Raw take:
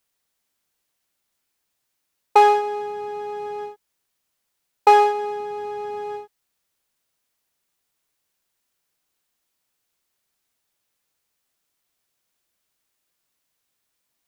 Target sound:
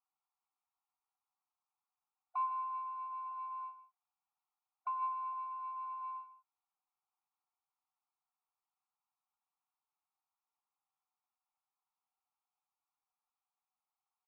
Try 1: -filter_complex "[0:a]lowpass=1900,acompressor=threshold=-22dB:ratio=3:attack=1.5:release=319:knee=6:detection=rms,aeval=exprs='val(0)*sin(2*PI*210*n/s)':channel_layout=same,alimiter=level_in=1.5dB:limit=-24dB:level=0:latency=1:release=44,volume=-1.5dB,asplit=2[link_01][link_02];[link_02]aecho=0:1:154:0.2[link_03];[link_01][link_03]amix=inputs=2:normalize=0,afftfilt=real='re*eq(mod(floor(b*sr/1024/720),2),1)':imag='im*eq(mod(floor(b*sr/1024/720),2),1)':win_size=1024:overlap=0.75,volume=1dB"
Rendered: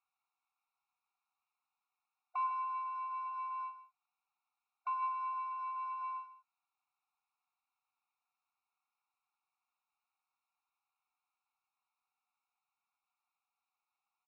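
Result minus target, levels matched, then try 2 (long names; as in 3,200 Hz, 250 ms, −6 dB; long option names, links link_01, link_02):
2,000 Hz band +7.5 dB
-filter_complex "[0:a]lowpass=830,acompressor=threshold=-22dB:ratio=3:attack=1.5:release=319:knee=6:detection=rms,aeval=exprs='val(0)*sin(2*PI*210*n/s)':channel_layout=same,alimiter=level_in=1.5dB:limit=-24dB:level=0:latency=1:release=44,volume=-1.5dB,asplit=2[link_01][link_02];[link_02]aecho=0:1:154:0.2[link_03];[link_01][link_03]amix=inputs=2:normalize=0,afftfilt=real='re*eq(mod(floor(b*sr/1024/720),2),1)':imag='im*eq(mod(floor(b*sr/1024/720),2),1)':win_size=1024:overlap=0.75,volume=1dB"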